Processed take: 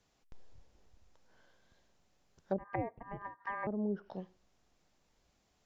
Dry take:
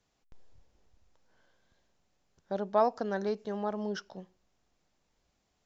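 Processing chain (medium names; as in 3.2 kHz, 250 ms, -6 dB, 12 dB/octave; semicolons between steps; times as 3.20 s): 2.58–3.67 s: ring modulator 1.4 kHz; low-pass that closes with the level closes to 380 Hz, closed at -30.5 dBFS; trim +2 dB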